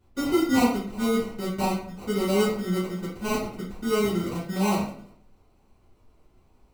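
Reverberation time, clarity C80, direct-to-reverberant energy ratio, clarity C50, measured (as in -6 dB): 0.55 s, 8.5 dB, -10.5 dB, 4.0 dB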